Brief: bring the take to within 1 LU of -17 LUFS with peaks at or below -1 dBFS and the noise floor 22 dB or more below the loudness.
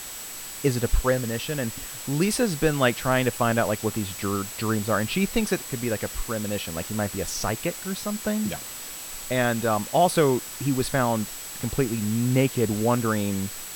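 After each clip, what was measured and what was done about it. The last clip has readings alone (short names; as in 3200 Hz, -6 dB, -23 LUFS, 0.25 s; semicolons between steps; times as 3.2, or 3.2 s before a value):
steady tone 7800 Hz; tone level -40 dBFS; noise floor -37 dBFS; noise floor target -48 dBFS; loudness -25.5 LUFS; peak -6.5 dBFS; loudness target -17.0 LUFS
-> notch 7800 Hz, Q 30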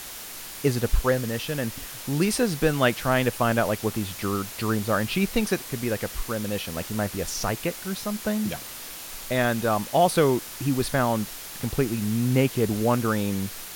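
steady tone none; noise floor -39 dBFS; noise floor target -48 dBFS
-> denoiser 9 dB, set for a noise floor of -39 dBFS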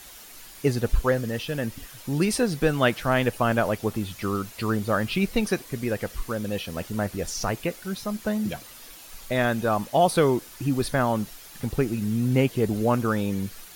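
noise floor -45 dBFS; noise floor target -48 dBFS
-> denoiser 6 dB, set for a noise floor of -45 dBFS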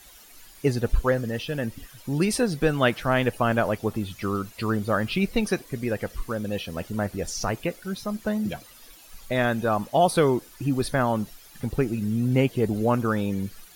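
noise floor -50 dBFS; loudness -26.0 LUFS; peak -7.0 dBFS; loudness target -17.0 LUFS
-> gain +9 dB; limiter -1 dBFS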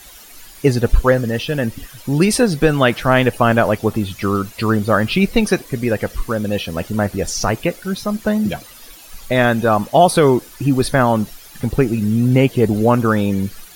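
loudness -17.0 LUFS; peak -1.0 dBFS; noise floor -41 dBFS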